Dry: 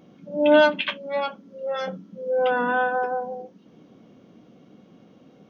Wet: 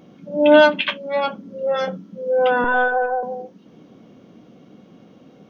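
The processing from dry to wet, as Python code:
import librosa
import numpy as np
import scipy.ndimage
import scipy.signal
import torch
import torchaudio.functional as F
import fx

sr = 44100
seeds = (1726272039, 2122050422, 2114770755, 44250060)

y = fx.low_shelf(x, sr, hz=360.0, db=8.5, at=(1.24, 1.85))
y = fx.lpc_vocoder(y, sr, seeds[0], excitation='pitch_kept', order=16, at=(2.64, 3.23))
y = y * 10.0 ** (4.5 / 20.0)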